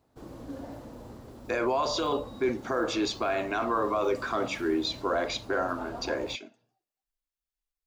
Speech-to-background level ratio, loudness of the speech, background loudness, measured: 15.0 dB, -29.5 LUFS, -44.5 LUFS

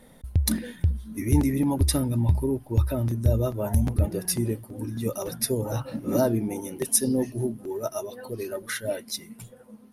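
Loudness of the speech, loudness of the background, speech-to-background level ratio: -27.5 LUFS, -29.0 LUFS, 1.5 dB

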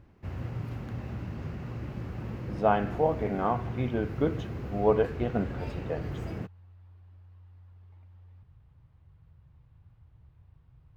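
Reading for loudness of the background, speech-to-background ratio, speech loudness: -37.5 LUFS, 7.5 dB, -30.0 LUFS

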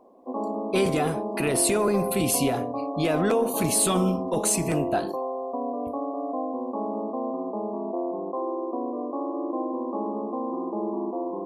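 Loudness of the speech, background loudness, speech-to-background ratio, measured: -25.0 LUFS, -30.5 LUFS, 5.5 dB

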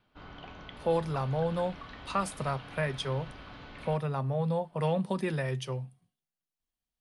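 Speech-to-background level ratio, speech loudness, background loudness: 14.5 dB, -32.5 LUFS, -47.0 LUFS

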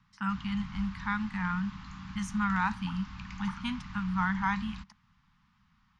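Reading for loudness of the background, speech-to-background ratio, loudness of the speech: -44.5 LUFS, 11.5 dB, -33.0 LUFS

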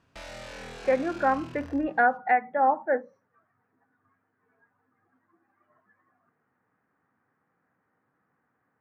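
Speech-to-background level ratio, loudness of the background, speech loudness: 17.0 dB, -43.0 LUFS, -26.0 LUFS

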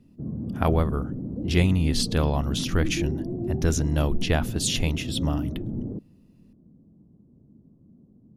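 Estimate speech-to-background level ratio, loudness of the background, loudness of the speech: 6.0 dB, -32.0 LUFS, -26.0 LUFS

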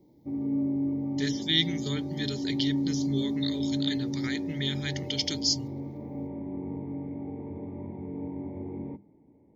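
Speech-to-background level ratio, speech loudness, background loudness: 2.5 dB, -30.5 LUFS, -33.0 LUFS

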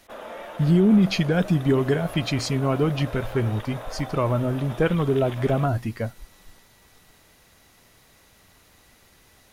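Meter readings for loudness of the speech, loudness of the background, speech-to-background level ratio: -23.0 LUFS, -38.5 LUFS, 15.5 dB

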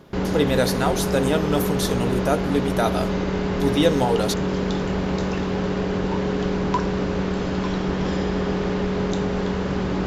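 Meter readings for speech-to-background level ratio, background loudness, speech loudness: 0.0 dB, -24.0 LUFS, -24.0 LUFS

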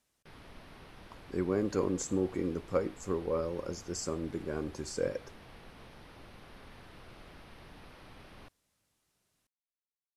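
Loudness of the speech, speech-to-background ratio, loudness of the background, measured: -34.5 LUFS, 19.0 dB, -53.5 LUFS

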